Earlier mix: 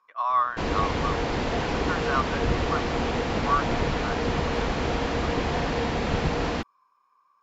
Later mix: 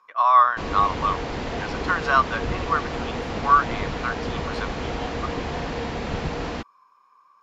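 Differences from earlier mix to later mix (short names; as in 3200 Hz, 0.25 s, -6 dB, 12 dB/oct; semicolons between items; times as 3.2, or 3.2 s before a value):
speech +8.0 dB; background: send -10.5 dB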